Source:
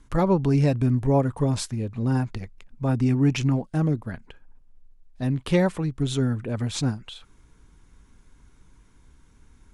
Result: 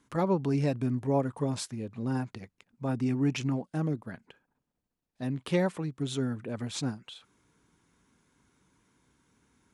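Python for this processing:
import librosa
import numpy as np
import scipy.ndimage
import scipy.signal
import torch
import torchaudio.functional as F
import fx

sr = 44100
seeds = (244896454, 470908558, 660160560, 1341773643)

y = scipy.signal.sosfilt(scipy.signal.butter(2, 150.0, 'highpass', fs=sr, output='sos'), x)
y = y * 10.0 ** (-5.5 / 20.0)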